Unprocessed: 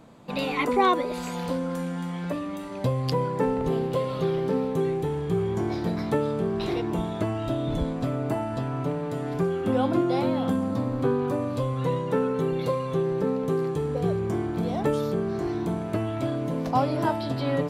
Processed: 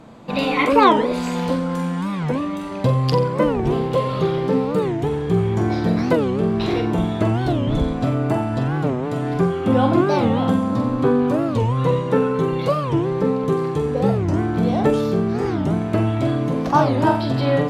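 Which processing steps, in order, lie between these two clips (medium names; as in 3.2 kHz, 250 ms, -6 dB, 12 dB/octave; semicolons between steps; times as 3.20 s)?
treble shelf 9.9 kHz -11.5 dB; on a send: flutter echo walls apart 7.7 m, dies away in 0.39 s; on the sum: warped record 45 rpm, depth 250 cents; trim +7 dB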